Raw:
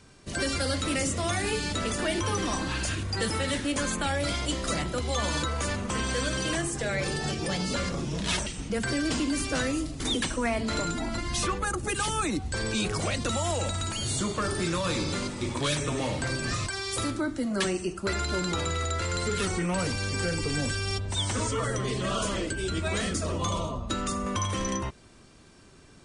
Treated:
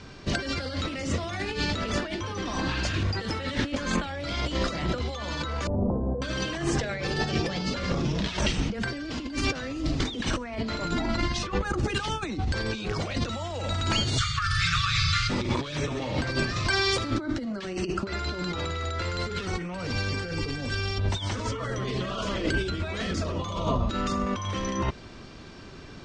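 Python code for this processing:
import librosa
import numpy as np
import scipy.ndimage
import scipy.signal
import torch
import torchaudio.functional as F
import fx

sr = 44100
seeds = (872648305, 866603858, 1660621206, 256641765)

y = fx.steep_lowpass(x, sr, hz=800.0, slope=36, at=(5.67, 6.22))
y = fx.brickwall_bandstop(y, sr, low_hz=150.0, high_hz=1100.0, at=(14.17, 15.29), fade=0.02)
y = scipy.signal.sosfilt(scipy.signal.butter(4, 5500.0, 'lowpass', fs=sr, output='sos'), y)
y = fx.over_compress(y, sr, threshold_db=-33.0, ratio=-0.5)
y = y * 10.0 ** (5.5 / 20.0)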